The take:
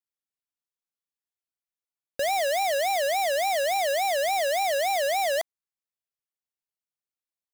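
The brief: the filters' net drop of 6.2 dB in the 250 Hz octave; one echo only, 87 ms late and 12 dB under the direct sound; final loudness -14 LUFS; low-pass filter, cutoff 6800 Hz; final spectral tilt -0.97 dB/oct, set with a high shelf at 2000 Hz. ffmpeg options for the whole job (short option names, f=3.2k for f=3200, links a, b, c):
-af "lowpass=6.8k,equalizer=f=250:t=o:g=-8.5,highshelf=f=2k:g=-6.5,aecho=1:1:87:0.251,volume=13dB"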